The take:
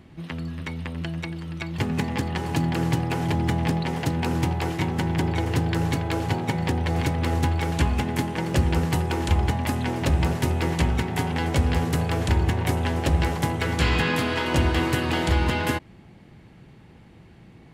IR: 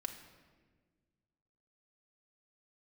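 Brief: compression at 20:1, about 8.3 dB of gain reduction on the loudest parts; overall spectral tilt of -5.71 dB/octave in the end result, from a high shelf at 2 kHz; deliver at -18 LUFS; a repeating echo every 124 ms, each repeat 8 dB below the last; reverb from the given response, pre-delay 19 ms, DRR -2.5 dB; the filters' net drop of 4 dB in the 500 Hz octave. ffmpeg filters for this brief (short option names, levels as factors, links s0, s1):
-filter_complex "[0:a]equalizer=f=500:t=o:g=-5,highshelf=f=2000:g=-6,acompressor=threshold=0.0631:ratio=20,aecho=1:1:124|248|372|496|620:0.398|0.159|0.0637|0.0255|0.0102,asplit=2[s0][s1];[1:a]atrim=start_sample=2205,adelay=19[s2];[s1][s2]afir=irnorm=-1:irlink=0,volume=1.58[s3];[s0][s3]amix=inputs=2:normalize=0,volume=2.51"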